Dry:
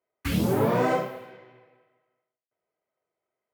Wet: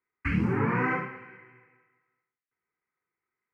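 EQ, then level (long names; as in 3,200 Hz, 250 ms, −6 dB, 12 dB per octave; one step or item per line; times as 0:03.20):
low-pass with resonance 2,300 Hz, resonance Q 2.3
phaser with its sweep stopped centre 1,500 Hz, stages 4
0.0 dB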